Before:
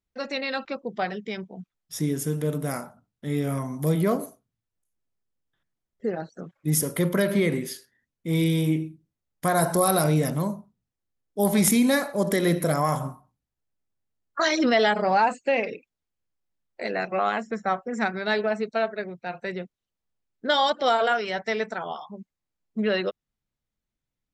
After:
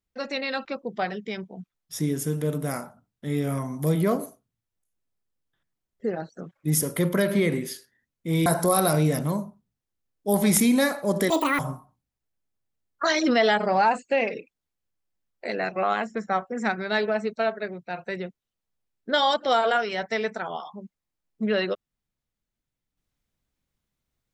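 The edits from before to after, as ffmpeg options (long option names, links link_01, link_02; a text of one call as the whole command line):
ffmpeg -i in.wav -filter_complex "[0:a]asplit=4[link_01][link_02][link_03][link_04];[link_01]atrim=end=8.462[link_05];[link_02]atrim=start=9.568:end=12.414[link_06];[link_03]atrim=start=12.41:end=12.95,asetpts=PTS-STARTPTS,asetrate=82026,aresample=44100,atrim=end_sample=12803,asetpts=PTS-STARTPTS[link_07];[link_04]atrim=start=12.946[link_08];[link_05][link_06]acrossfade=duration=0.004:curve1=hsin:curve2=hsin[link_09];[link_09][link_07]acrossfade=duration=0.004:curve1=hsin:curve2=hsin[link_10];[link_10][link_08]acrossfade=duration=0.004:curve1=hsin:curve2=hsin" out.wav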